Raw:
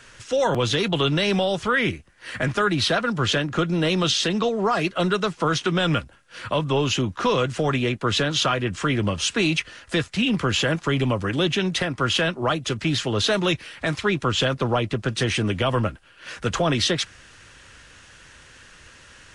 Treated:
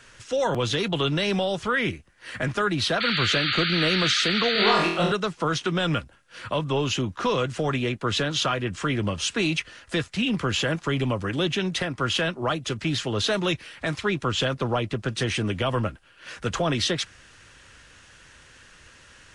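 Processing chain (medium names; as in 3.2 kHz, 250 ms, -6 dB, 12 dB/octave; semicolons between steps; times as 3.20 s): 3.00–4.71 s: painted sound noise 1.2–4.7 kHz -23 dBFS; 4.53–5.12 s: flutter echo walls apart 4.1 m, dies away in 0.65 s; trim -3 dB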